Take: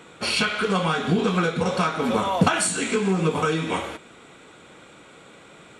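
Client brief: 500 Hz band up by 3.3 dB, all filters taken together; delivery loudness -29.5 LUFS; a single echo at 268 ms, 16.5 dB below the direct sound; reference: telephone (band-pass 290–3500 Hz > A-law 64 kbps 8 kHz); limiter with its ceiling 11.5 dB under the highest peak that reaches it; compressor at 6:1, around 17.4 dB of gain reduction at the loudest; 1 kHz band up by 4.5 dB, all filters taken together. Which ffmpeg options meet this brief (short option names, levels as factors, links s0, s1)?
-af "equalizer=f=500:t=o:g=3.5,equalizer=f=1000:t=o:g=5,acompressor=threshold=0.0282:ratio=6,alimiter=level_in=2.24:limit=0.0631:level=0:latency=1,volume=0.447,highpass=290,lowpass=3500,aecho=1:1:268:0.15,volume=3.98" -ar 8000 -c:a pcm_alaw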